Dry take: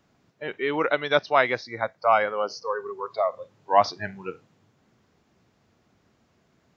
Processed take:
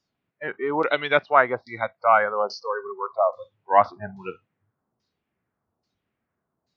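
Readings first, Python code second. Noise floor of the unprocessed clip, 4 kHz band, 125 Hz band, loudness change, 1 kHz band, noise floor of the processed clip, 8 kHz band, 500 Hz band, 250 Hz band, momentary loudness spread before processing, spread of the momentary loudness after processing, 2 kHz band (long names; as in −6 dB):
−67 dBFS, −2.0 dB, 0.0 dB, +2.0 dB, +2.5 dB, −82 dBFS, can't be measured, +1.0 dB, +0.5 dB, 15 LU, 16 LU, +2.0 dB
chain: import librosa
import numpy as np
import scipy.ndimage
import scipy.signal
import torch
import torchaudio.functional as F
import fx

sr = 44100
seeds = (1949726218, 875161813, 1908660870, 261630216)

y = fx.filter_lfo_lowpass(x, sr, shape='saw_down', hz=1.2, low_hz=830.0, high_hz=4500.0, q=1.9)
y = fx.noise_reduce_blind(y, sr, reduce_db=16)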